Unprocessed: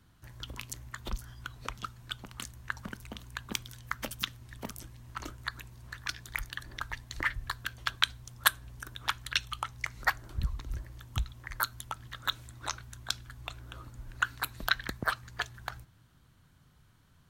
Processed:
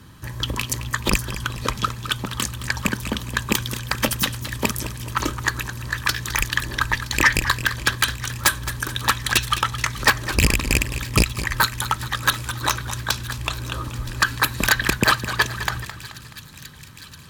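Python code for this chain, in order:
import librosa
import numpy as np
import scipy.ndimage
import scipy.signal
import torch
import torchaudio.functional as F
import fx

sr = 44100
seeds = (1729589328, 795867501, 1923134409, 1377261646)

p1 = fx.rattle_buzz(x, sr, strikes_db=-35.0, level_db=-12.0)
p2 = fx.fold_sine(p1, sr, drive_db=19, ceiling_db=-4.0)
p3 = fx.notch_comb(p2, sr, f0_hz=710.0)
p4 = p3 + fx.echo_wet_highpass(p3, sr, ms=970, feedback_pct=74, hz=2700.0, wet_db=-17.5, dry=0)
p5 = fx.echo_warbled(p4, sr, ms=214, feedback_pct=48, rate_hz=2.8, cents=114, wet_db=-12.0)
y = F.gain(torch.from_numpy(p5), -3.5).numpy()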